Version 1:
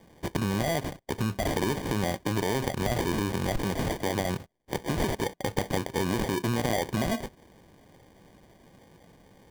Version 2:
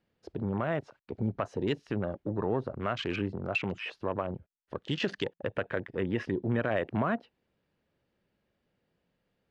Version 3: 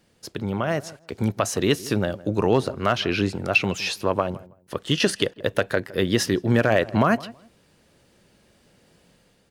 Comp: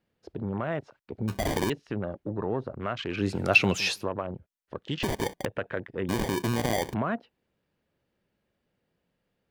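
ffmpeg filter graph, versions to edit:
-filter_complex "[0:a]asplit=3[a][b][c];[1:a]asplit=5[d][e][f][g][h];[d]atrim=end=1.282[i];[a]atrim=start=1.278:end=1.702[j];[e]atrim=start=1.698:end=3.39[k];[2:a]atrim=start=3.15:end=4.1[l];[f]atrim=start=3.86:end=5.032[m];[b]atrim=start=5.028:end=5.452[n];[g]atrim=start=5.448:end=6.092[o];[c]atrim=start=6.088:end=6.942[p];[h]atrim=start=6.938[q];[i][j]acrossfade=d=0.004:c1=hsin:c2=hsin[r];[r][k]acrossfade=d=0.004:c1=hsin:c2=hsin[s];[s][l]acrossfade=d=0.24:c1=tri:c2=tri[t];[t][m]acrossfade=d=0.24:c1=tri:c2=tri[u];[u][n]acrossfade=d=0.004:c1=hsin:c2=hsin[v];[v][o]acrossfade=d=0.004:c1=hsin:c2=hsin[w];[w][p]acrossfade=d=0.004:c1=hsin:c2=hsin[x];[x][q]acrossfade=d=0.004:c1=hsin:c2=hsin"

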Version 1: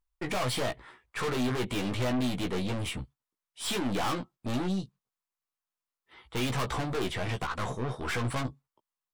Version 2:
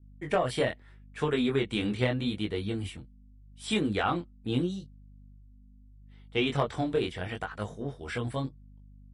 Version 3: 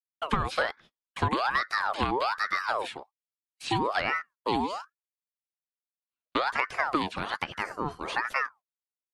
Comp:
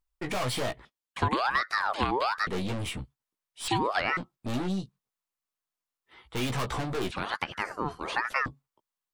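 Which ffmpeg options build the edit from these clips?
-filter_complex "[2:a]asplit=3[a][b][c];[0:a]asplit=4[d][e][f][g];[d]atrim=end=0.852[h];[a]atrim=start=0.848:end=2.472[i];[e]atrim=start=2.468:end=3.682[j];[b]atrim=start=3.678:end=4.172[k];[f]atrim=start=4.168:end=7.112[l];[c]atrim=start=7.108:end=8.462[m];[g]atrim=start=8.458[n];[h][i]acrossfade=d=0.004:c1=hsin:c2=hsin[o];[o][j]acrossfade=d=0.004:c1=hsin:c2=hsin[p];[p][k]acrossfade=d=0.004:c1=hsin:c2=hsin[q];[q][l]acrossfade=d=0.004:c1=hsin:c2=hsin[r];[r][m]acrossfade=d=0.004:c1=hsin:c2=hsin[s];[s][n]acrossfade=d=0.004:c1=hsin:c2=hsin"

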